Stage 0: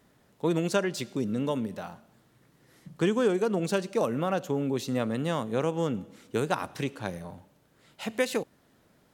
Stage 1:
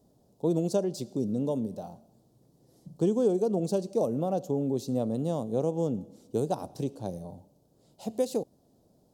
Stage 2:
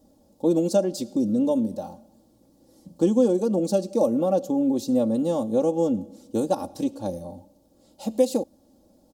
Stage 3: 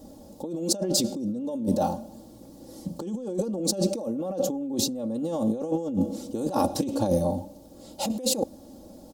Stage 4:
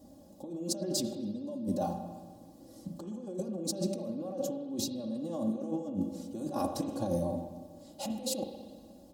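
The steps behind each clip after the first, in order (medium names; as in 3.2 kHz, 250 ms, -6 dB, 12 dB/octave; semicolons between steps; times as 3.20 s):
FFT filter 730 Hz 0 dB, 1.4 kHz -21 dB, 2 kHz -26 dB, 4.7 kHz -4 dB
comb 3.6 ms, depth 83%; trim +4 dB
compressor with a negative ratio -32 dBFS, ratio -1; trim +4 dB
comb of notches 450 Hz; spring tank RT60 1.5 s, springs 40/59 ms, chirp 45 ms, DRR 5.5 dB; trim -8 dB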